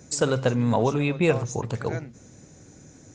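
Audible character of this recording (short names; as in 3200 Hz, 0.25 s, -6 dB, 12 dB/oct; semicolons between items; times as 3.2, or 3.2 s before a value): noise floor -51 dBFS; spectral tilt -5.5 dB/oct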